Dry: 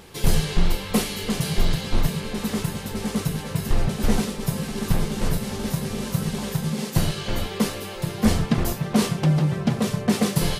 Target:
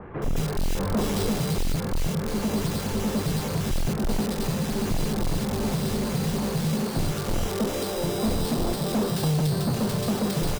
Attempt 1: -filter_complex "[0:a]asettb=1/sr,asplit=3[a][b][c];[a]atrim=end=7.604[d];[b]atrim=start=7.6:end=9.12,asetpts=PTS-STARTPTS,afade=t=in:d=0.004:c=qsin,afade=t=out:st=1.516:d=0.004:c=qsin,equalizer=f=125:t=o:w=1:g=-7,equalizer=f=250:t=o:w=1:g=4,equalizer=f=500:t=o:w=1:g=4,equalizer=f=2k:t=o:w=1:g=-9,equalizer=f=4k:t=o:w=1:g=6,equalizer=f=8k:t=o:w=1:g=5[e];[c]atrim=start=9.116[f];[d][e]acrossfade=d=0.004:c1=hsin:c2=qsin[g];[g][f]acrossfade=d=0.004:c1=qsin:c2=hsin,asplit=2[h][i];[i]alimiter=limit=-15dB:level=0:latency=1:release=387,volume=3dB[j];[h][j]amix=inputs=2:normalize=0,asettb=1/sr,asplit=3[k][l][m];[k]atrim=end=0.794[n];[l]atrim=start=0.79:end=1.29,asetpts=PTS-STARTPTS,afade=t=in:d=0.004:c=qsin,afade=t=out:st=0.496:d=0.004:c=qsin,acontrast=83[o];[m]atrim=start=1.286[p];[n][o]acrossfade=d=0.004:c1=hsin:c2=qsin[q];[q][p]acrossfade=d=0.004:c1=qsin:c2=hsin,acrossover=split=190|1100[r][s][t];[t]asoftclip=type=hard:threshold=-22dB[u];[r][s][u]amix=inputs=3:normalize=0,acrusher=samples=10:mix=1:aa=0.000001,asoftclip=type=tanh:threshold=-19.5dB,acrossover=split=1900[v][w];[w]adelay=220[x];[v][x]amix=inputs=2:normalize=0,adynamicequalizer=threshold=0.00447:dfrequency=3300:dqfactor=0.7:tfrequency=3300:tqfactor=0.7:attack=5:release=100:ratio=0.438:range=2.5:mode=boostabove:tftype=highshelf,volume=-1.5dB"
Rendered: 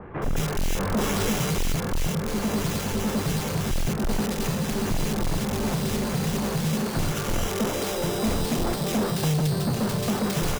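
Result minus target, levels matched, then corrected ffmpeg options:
hard clip: distortion -7 dB
-filter_complex "[0:a]asettb=1/sr,asplit=3[a][b][c];[a]atrim=end=7.604[d];[b]atrim=start=7.6:end=9.12,asetpts=PTS-STARTPTS,afade=t=in:d=0.004:c=qsin,afade=t=out:st=1.516:d=0.004:c=qsin,equalizer=f=125:t=o:w=1:g=-7,equalizer=f=250:t=o:w=1:g=4,equalizer=f=500:t=o:w=1:g=4,equalizer=f=2k:t=o:w=1:g=-9,equalizer=f=4k:t=o:w=1:g=6,equalizer=f=8k:t=o:w=1:g=5[e];[c]atrim=start=9.116[f];[d][e]acrossfade=d=0.004:c1=hsin:c2=qsin[g];[g][f]acrossfade=d=0.004:c1=qsin:c2=hsin,asplit=2[h][i];[i]alimiter=limit=-15dB:level=0:latency=1:release=387,volume=3dB[j];[h][j]amix=inputs=2:normalize=0,asettb=1/sr,asplit=3[k][l][m];[k]atrim=end=0.794[n];[l]atrim=start=0.79:end=1.29,asetpts=PTS-STARTPTS,afade=t=in:d=0.004:c=qsin,afade=t=out:st=0.496:d=0.004:c=qsin,acontrast=83[o];[m]atrim=start=1.286[p];[n][o]acrossfade=d=0.004:c1=hsin:c2=qsin[q];[q][p]acrossfade=d=0.004:c1=qsin:c2=hsin,acrossover=split=190|1100[r][s][t];[t]asoftclip=type=hard:threshold=-32.5dB[u];[r][s][u]amix=inputs=3:normalize=0,acrusher=samples=10:mix=1:aa=0.000001,asoftclip=type=tanh:threshold=-19.5dB,acrossover=split=1900[v][w];[w]adelay=220[x];[v][x]amix=inputs=2:normalize=0,adynamicequalizer=threshold=0.00447:dfrequency=3300:dqfactor=0.7:tfrequency=3300:tqfactor=0.7:attack=5:release=100:ratio=0.438:range=2.5:mode=boostabove:tftype=highshelf,volume=-1.5dB"

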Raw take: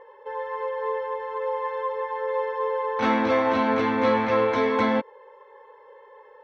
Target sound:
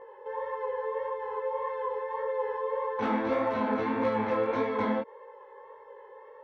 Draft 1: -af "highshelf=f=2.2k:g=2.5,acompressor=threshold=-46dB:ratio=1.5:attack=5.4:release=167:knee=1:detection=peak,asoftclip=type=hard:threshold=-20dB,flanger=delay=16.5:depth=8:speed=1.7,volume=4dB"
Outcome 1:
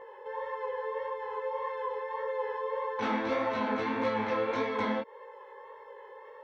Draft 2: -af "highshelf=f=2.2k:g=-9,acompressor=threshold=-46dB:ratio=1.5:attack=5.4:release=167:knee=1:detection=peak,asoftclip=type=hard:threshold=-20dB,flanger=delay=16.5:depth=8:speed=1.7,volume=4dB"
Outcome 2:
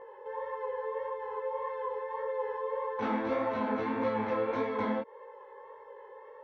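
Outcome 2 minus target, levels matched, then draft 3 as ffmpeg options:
compressor: peak gain reduction +3 dB
-af "highshelf=f=2.2k:g=-9,acompressor=threshold=-37dB:ratio=1.5:attack=5.4:release=167:knee=1:detection=peak,asoftclip=type=hard:threshold=-20dB,flanger=delay=16.5:depth=8:speed=1.7,volume=4dB"

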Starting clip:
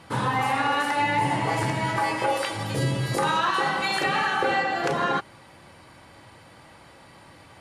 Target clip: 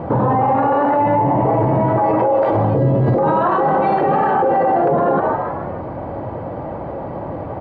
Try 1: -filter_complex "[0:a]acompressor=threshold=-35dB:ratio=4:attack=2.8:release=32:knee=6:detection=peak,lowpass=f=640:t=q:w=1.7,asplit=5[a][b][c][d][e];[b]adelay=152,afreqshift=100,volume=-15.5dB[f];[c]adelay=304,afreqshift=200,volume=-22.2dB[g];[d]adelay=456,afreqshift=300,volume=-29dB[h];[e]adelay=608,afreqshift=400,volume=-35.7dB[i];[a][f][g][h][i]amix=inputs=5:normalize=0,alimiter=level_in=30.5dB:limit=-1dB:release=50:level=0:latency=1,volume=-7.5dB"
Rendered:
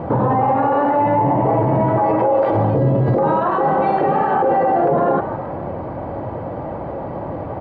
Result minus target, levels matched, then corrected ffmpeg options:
compressor: peak gain reduction +13.5 dB
-filter_complex "[0:a]lowpass=f=640:t=q:w=1.7,asplit=5[a][b][c][d][e];[b]adelay=152,afreqshift=100,volume=-15.5dB[f];[c]adelay=304,afreqshift=200,volume=-22.2dB[g];[d]adelay=456,afreqshift=300,volume=-29dB[h];[e]adelay=608,afreqshift=400,volume=-35.7dB[i];[a][f][g][h][i]amix=inputs=5:normalize=0,alimiter=level_in=30.5dB:limit=-1dB:release=50:level=0:latency=1,volume=-7.5dB"

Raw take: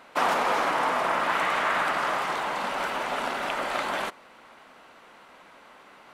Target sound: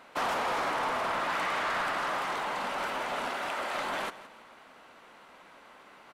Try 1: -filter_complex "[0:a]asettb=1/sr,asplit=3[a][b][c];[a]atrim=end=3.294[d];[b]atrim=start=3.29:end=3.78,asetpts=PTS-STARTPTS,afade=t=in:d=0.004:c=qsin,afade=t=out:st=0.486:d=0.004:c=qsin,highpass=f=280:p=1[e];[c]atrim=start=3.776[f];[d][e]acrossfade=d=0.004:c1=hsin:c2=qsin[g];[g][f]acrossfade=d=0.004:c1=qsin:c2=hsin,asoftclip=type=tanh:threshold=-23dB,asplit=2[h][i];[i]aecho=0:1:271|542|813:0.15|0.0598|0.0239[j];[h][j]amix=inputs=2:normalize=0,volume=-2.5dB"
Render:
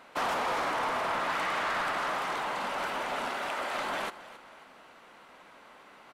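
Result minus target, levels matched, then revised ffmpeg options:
echo 0.105 s late
-filter_complex "[0:a]asettb=1/sr,asplit=3[a][b][c];[a]atrim=end=3.294[d];[b]atrim=start=3.29:end=3.78,asetpts=PTS-STARTPTS,afade=t=in:d=0.004:c=qsin,afade=t=out:st=0.486:d=0.004:c=qsin,highpass=f=280:p=1[e];[c]atrim=start=3.776[f];[d][e]acrossfade=d=0.004:c1=hsin:c2=qsin[g];[g][f]acrossfade=d=0.004:c1=qsin:c2=hsin,asoftclip=type=tanh:threshold=-23dB,asplit=2[h][i];[i]aecho=0:1:166|332|498:0.15|0.0598|0.0239[j];[h][j]amix=inputs=2:normalize=0,volume=-2.5dB"

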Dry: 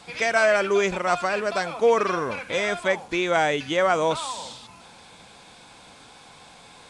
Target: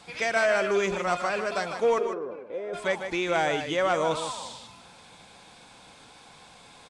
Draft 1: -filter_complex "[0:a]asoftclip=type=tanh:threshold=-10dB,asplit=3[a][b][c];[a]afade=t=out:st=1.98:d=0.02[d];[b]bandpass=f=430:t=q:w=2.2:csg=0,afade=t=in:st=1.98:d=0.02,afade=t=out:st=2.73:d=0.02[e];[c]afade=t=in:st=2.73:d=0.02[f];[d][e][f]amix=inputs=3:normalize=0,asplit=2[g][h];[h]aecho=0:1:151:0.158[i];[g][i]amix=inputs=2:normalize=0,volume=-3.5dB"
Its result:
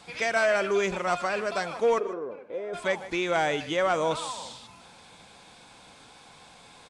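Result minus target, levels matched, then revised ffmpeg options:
echo-to-direct -7.5 dB
-filter_complex "[0:a]asoftclip=type=tanh:threshold=-10dB,asplit=3[a][b][c];[a]afade=t=out:st=1.98:d=0.02[d];[b]bandpass=f=430:t=q:w=2.2:csg=0,afade=t=in:st=1.98:d=0.02,afade=t=out:st=2.73:d=0.02[e];[c]afade=t=in:st=2.73:d=0.02[f];[d][e][f]amix=inputs=3:normalize=0,asplit=2[g][h];[h]aecho=0:1:151:0.376[i];[g][i]amix=inputs=2:normalize=0,volume=-3.5dB"

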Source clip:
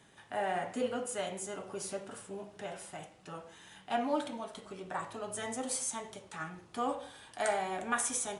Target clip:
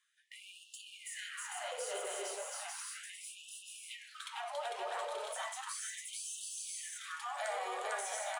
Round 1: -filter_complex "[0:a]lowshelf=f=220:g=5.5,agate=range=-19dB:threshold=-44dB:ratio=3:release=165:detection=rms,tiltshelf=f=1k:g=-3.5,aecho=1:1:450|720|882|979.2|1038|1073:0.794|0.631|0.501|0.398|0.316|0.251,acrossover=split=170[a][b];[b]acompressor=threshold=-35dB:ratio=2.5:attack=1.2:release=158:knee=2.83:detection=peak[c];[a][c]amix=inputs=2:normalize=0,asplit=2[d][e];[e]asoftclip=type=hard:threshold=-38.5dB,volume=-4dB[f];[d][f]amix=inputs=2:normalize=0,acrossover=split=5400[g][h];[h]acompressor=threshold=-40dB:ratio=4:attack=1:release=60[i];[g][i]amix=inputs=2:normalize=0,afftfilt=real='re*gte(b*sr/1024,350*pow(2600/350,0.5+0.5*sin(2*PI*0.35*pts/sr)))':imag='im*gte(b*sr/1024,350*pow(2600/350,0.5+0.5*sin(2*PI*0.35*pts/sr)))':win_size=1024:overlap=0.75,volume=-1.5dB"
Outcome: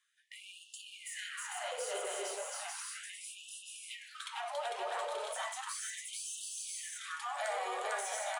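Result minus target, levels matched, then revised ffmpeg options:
hard clip: distortion -5 dB
-filter_complex "[0:a]lowshelf=f=220:g=5.5,agate=range=-19dB:threshold=-44dB:ratio=3:release=165:detection=rms,tiltshelf=f=1k:g=-3.5,aecho=1:1:450|720|882|979.2|1038|1073:0.794|0.631|0.501|0.398|0.316|0.251,acrossover=split=170[a][b];[b]acompressor=threshold=-35dB:ratio=2.5:attack=1.2:release=158:knee=2.83:detection=peak[c];[a][c]amix=inputs=2:normalize=0,asplit=2[d][e];[e]asoftclip=type=hard:threshold=-48dB,volume=-4dB[f];[d][f]amix=inputs=2:normalize=0,acrossover=split=5400[g][h];[h]acompressor=threshold=-40dB:ratio=4:attack=1:release=60[i];[g][i]amix=inputs=2:normalize=0,afftfilt=real='re*gte(b*sr/1024,350*pow(2600/350,0.5+0.5*sin(2*PI*0.35*pts/sr)))':imag='im*gte(b*sr/1024,350*pow(2600/350,0.5+0.5*sin(2*PI*0.35*pts/sr)))':win_size=1024:overlap=0.75,volume=-1.5dB"

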